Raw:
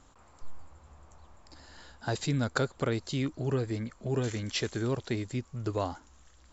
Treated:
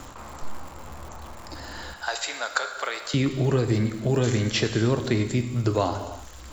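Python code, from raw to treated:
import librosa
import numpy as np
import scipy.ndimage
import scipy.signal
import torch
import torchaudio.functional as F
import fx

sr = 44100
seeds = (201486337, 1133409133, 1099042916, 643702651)

p1 = fx.level_steps(x, sr, step_db=12)
p2 = x + F.gain(torch.from_numpy(p1), -1.5).numpy()
p3 = fx.bessel_highpass(p2, sr, hz=960.0, order=4, at=(1.93, 3.14))
p4 = p3 + fx.echo_single(p3, sr, ms=222, db=-21.5, dry=0)
p5 = fx.rev_gated(p4, sr, seeds[0], gate_ms=360, shape='falling', drr_db=6.5)
p6 = fx.dmg_crackle(p5, sr, seeds[1], per_s=210.0, level_db=-47.0)
p7 = fx.band_squash(p6, sr, depth_pct=40)
y = F.gain(torch.from_numpy(p7), 5.0).numpy()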